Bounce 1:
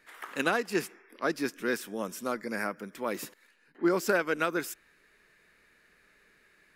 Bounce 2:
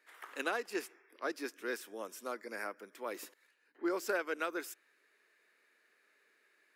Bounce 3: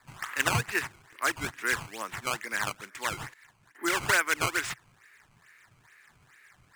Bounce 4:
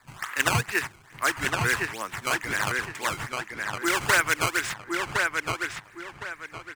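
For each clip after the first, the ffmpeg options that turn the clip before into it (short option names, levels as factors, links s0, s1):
-af "highpass=f=300:w=0.5412,highpass=f=300:w=1.3066,volume=0.422"
-af "acrusher=samples=14:mix=1:aa=0.000001:lfo=1:lforange=22.4:lforate=2.3,equalizer=f=125:t=o:w=1:g=12,equalizer=f=250:t=o:w=1:g=-4,equalizer=f=500:t=o:w=1:g=-9,equalizer=f=1000:t=o:w=1:g=5,equalizer=f=2000:t=o:w=1:g=10,equalizer=f=8000:t=o:w=1:g=8,volume=2"
-filter_complex "[0:a]asplit=2[s0][s1];[s1]adelay=1062,lowpass=f=4300:p=1,volume=0.708,asplit=2[s2][s3];[s3]adelay=1062,lowpass=f=4300:p=1,volume=0.3,asplit=2[s4][s5];[s5]adelay=1062,lowpass=f=4300:p=1,volume=0.3,asplit=2[s6][s7];[s7]adelay=1062,lowpass=f=4300:p=1,volume=0.3[s8];[s0][s2][s4][s6][s8]amix=inputs=5:normalize=0,volume=1.41"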